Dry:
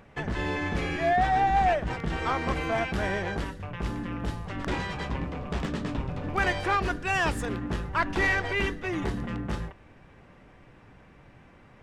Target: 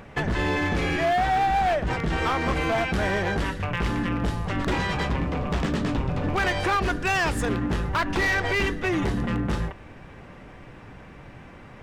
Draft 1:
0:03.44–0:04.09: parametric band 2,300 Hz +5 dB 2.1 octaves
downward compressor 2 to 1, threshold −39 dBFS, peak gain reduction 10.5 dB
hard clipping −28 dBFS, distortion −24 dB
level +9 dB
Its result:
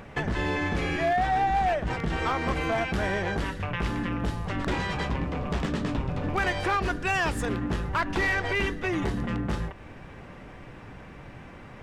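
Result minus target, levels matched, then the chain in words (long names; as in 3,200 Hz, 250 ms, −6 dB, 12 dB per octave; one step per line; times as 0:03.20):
downward compressor: peak gain reduction +4 dB
0:03.44–0:04.09: parametric band 2,300 Hz +5 dB 2.1 octaves
downward compressor 2 to 1, threshold −31.5 dBFS, peak gain reduction 7 dB
hard clipping −28 dBFS, distortion −15 dB
level +9 dB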